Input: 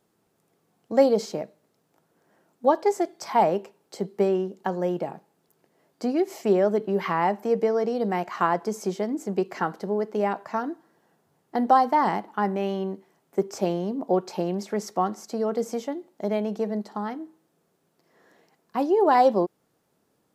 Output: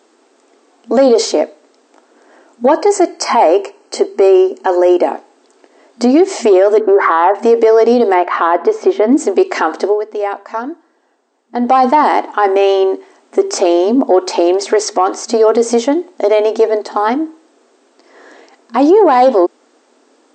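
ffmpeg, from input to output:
-filter_complex "[0:a]asettb=1/sr,asplit=3[a][b][c];[a]atrim=end=2.714[d];[b]atrim=start=2.71:end=5.07,asetpts=PTS-STARTPTS,afade=t=in:d=0.004:c=qsin,afade=t=out:st=2.356:d=0.004:c=qsin,asuperstop=centerf=3600:order=12:qfactor=4.8[e];[c]atrim=start=5.066[f];[d][e]acrossfade=d=0.004:c1=hsin:c2=qsin[g];[g][f]acrossfade=d=0.004:c1=qsin:c2=hsin,asettb=1/sr,asplit=3[h][i][j];[h]atrim=end=6.804[k];[i]atrim=start=6.8:end=7.35,asetpts=PTS-STARTPTS,afade=t=in:d=0.004:c=qsin,afade=t=out:st=0.546:d=0.004:c=qsin,highshelf=f=2.1k:t=q:w=3:g=-12.5[l];[j]atrim=start=7.346[m];[k][l]acrossfade=d=0.004:c1=hsin:c2=qsin[n];[n][m]acrossfade=d=0.004:c1=qsin:c2=hsin,asettb=1/sr,asplit=3[o][p][q];[o]atrim=end=8.144[r];[p]atrim=start=8.14:end=9.12,asetpts=PTS-STARTPTS,afade=t=in:d=0.004:c=qsin,afade=t=out:st=0.976:d=0.004:c=qsin,lowpass=2.4k[s];[q]atrim=start=9.116[t];[r][s]acrossfade=d=0.004:c1=hsin:c2=qsin[u];[u][t]acrossfade=d=0.004:c1=qsin:c2=hsin,asplit=3[v][w][x];[v]atrim=end=10.03,asetpts=PTS-STARTPTS,afade=t=out:st=9.87:d=0.16:c=qua:silence=0.251189[y];[w]atrim=start=10.03:end=11.57,asetpts=PTS-STARTPTS,volume=-12dB[z];[x]atrim=start=11.57,asetpts=PTS-STARTPTS,afade=t=in:d=0.16:c=qua:silence=0.251189[aa];[y][z][aa]concat=n=3:v=0:a=1,acontrast=86,afftfilt=real='re*between(b*sr/4096,230,8600)':imag='im*between(b*sr/4096,230,8600)':win_size=4096:overlap=0.75,alimiter=level_in=13.5dB:limit=-1dB:release=50:level=0:latency=1,volume=-1dB"

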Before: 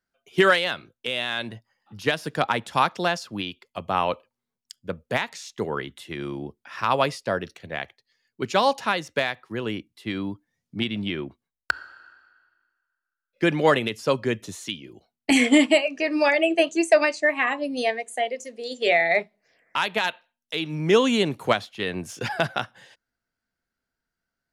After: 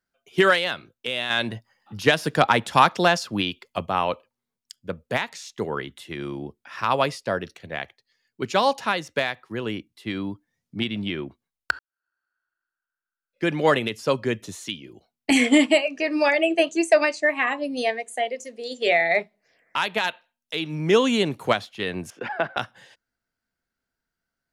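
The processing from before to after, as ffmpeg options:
-filter_complex "[0:a]asettb=1/sr,asplit=3[a][b][c];[a]atrim=end=1.304[d];[b]atrim=start=1.3:end=3.86,asetpts=PTS-STARTPTS,afade=t=in:d=0.004:c=qsin,afade=t=out:st=2.556:d=0.004:c=qsin,acontrast=43[e];[c]atrim=start=3.856[f];[d][e]acrossfade=d=0.004:c1=hsin:c2=qsin[g];[g][f]acrossfade=d=0.004:c1=qsin:c2=hsin,asettb=1/sr,asplit=3[h][i][j];[h]atrim=end=22.104[k];[i]atrim=start=22.1:end=22.57,asetpts=PTS-STARTPTS,afade=t=in:d=0.004:c=qsin,afade=t=out:st=0.466:d=0.004:c=qsin,acrossover=split=210 2700:gain=0.112 1 0.0631[l][m][n];[l][m][n]amix=inputs=3:normalize=0[o];[j]atrim=start=22.566[p];[k][o]acrossfade=d=0.004:c1=hsin:c2=qsin[q];[q][p]acrossfade=d=0.004:c1=qsin:c2=hsin,asplit=2[r][s];[r]atrim=end=11.79,asetpts=PTS-STARTPTS,afade=t=out:st=11.786:d=0.004:c=hsin[t];[s]atrim=start=11.79,asetpts=PTS-STARTPTS,afade=t=in:d=1.94:c=qua[u];[t][u]concat=n=2:v=0:a=1"

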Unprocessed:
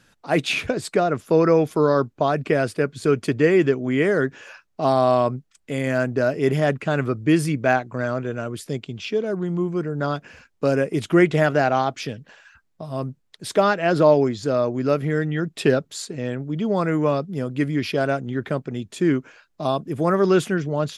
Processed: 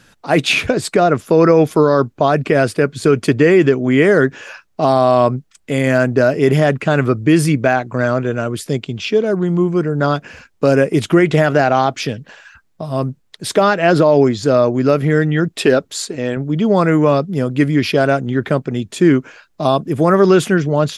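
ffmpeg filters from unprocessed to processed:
-filter_complex "[0:a]asettb=1/sr,asplit=3[a][b][c];[a]atrim=end=15.484[d];[b]atrim=start=15.48:end=16.37,asetpts=PTS-STARTPTS,afade=t=in:d=0.004:c=qsin,afade=t=out:st=0.886:d=0.004:c=qsin,equalizer=f=150:t=o:w=0.77:g=-9[e];[c]atrim=start=16.366[f];[d][e]acrossfade=d=0.004:c1=hsin:c2=qsin[g];[g][f]acrossfade=d=0.004:c1=qsin:c2=hsin,alimiter=level_in=9.5dB:limit=-1dB:release=50:level=0:latency=1,volume=-1dB"

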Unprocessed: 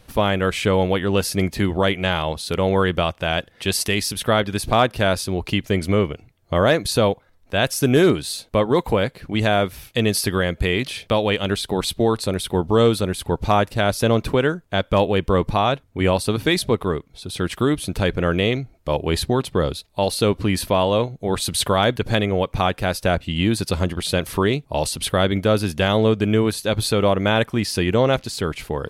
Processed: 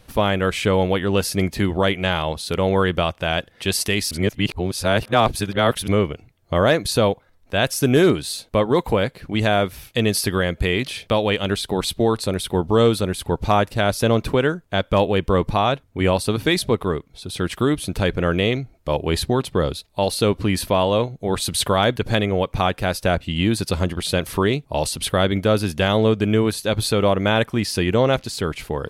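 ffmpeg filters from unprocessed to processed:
-filter_complex "[0:a]asplit=3[a][b][c];[a]atrim=end=4.112[d];[b]atrim=start=4.108:end=5.882,asetpts=PTS-STARTPTS,areverse[e];[c]atrim=start=5.878[f];[d][e]acrossfade=d=0.004:c1=hsin:c2=hsin[g];[g][f]acrossfade=d=0.004:c1=hsin:c2=hsin"

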